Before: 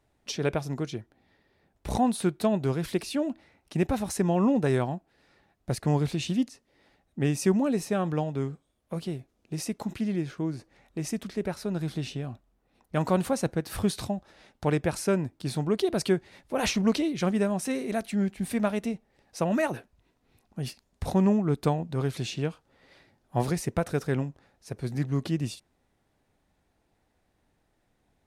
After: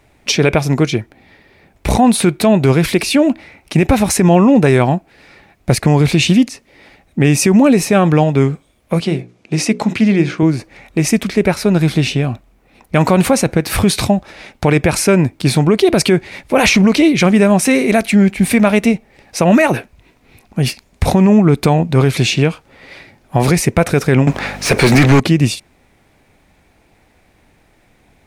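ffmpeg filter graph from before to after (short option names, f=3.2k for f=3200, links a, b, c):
-filter_complex "[0:a]asettb=1/sr,asplit=3[a][b][c];[a]atrim=end=9.004[d];[b]atrim=start=9:end=10.43,asetpts=PTS-STARTPTS,afade=t=in:d=0.004:c=qsin,afade=t=out:st=1.426:d=0.004:c=qsin,highpass=120,lowpass=7.7k,bandreject=f=60:t=h:w=6,bandreject=f=120:t=h:w=6,bandreject=f=180:t=h:w=6,bandreject=f=240:t=h:w=6,bandreject=f=300:t=h:w=6,bandreject=f=360:t=h:w=6,bandreject=f=420:t=h:w=6,bandreject=f=480:t=h:w=6,bandreject=f=540:t=h:w=6[e];[c]atrim=start=10.426[f];[d][e]acrossfade=d=0.004:c1=hsin:c2=qsin[g];[g][f]acrossfade=d=0.004:c1=qsin:c2=hsin,asettb=1/sr,asplit=3[h][i][j];[h]atrim=end=24.274[k];[i]atrim=start=24.27:end=25.2,asetpts=PTS-STARTPTS,afade=t=in:d=0.004:c=qsin,afade=t=out:st=0.926:d=0.004:c=qsin,highshelf=f=3.1k:g=12,aeval=exprs='val(0)+0.00178*(sin(2*PI*50*n/s)+sin(2*PI*2*50*n/s)/2+sin(2*PI*3*50*n/s)/3+sin(2*PI*4*50*n/s)/4+sin(2*PI*5*50*n/s)/5)':c=same,asplit=2[l][m];[m]highpass=f=720:p=1,volume=30dB,asoftclip=type=tanh:threshold=-17dB[n];[l][n]amix=inputs=2:normalize=0,lowpass=f=1.5k:p=1,volume=-6dB[o];[j]atrim=start=25.196[p];[k][o]acrossfade=d=0.004:c1=hsin:c2=qsin[q];[q][p]acrossfade=d=0.004:c1=qsin:c2=hsin,equalizer=f=2.3k:t=o:w=0.38:g=8.5,alimiter=level_in=19dB:limit=-1dB:release=50:level=0:latency=1,volume=-1dB"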